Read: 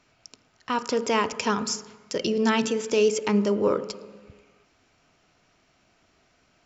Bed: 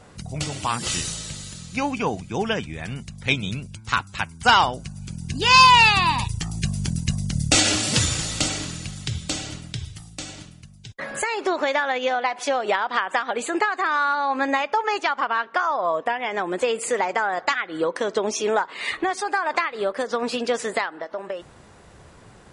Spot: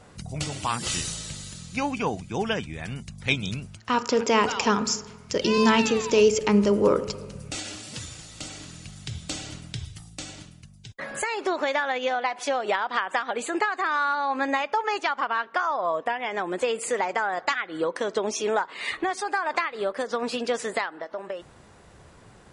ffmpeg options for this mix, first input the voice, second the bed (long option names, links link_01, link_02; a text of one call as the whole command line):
ffmpeg -i stem1.wav -i stem2.wav -filter_complex "[0:a]adelay=3200,volume=2.5dB[link_01];[1:a]volume=11dB,afade=type=out:start_time=3.66:duration=0.22:silence=0.199526,afade=type=in:start_time=8.31:duration=1.46:silence=0.211349[link_02];[link_01][link_02]amix=inputs=2:normalize=0" out.wav